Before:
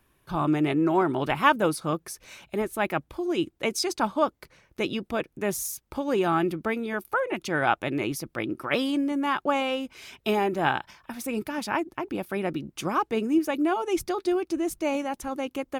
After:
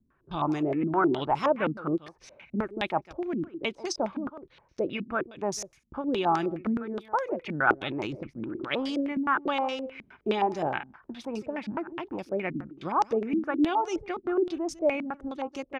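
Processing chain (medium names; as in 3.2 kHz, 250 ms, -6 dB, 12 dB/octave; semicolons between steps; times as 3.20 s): 7.72–8.99 s: transient shaper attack -3 dB, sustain +8 dB; delay 150 ms -17 dB; step-sequenced low-pass 9.6 Hz 230–5600 Hz; trim -5.5 dB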